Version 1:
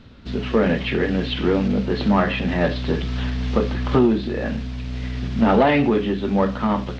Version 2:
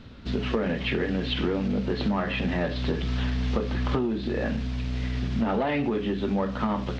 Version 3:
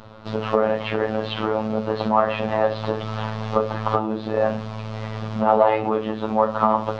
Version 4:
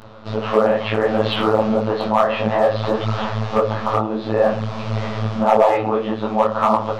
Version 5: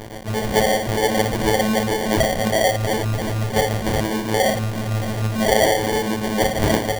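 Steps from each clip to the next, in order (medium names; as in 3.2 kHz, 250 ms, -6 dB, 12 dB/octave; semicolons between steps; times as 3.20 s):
compression 6:1, threshold -23 dBFS, peak gain reduction 11 dB
high-order bell 800 Hz +13.5 dB; robot voice 109 Hz; trim +1.5 dB
level rider gain up to 10.5 dB; hard clipper -6 dBFS, distortion -20 dB; detune thickener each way 56 cents; trim +6 dB
in parallel at -10.5 dB: fuzz box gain 39 dB, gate -42 dBFS; on the sum: sample-rate reducer 1.3 kHz, jitter 0%; trim -4 dB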